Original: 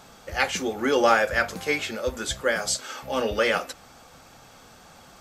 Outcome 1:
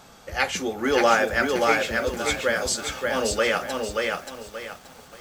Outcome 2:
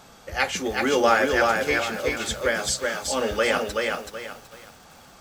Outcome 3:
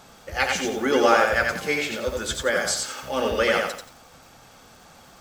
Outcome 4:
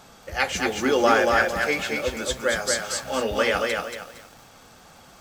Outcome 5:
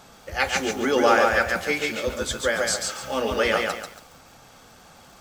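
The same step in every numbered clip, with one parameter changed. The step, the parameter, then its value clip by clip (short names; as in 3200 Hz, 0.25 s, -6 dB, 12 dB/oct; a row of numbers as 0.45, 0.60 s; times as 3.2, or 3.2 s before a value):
lo-fi delay, time: 579, 377, 89, 230, 140 ms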